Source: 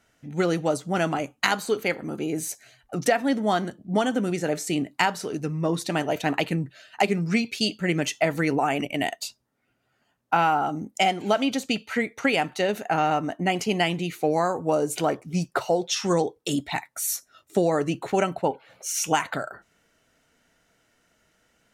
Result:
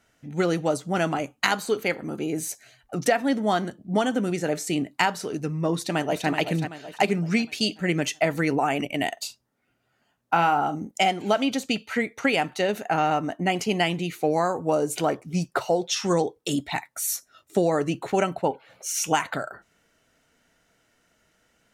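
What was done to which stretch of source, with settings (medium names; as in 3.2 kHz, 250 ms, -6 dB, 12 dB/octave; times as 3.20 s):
5.73–6.29 s: echo throw 380 ms, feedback 45%, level -8 dB
9.13–10.91 s: doubling 41 ms -12 dB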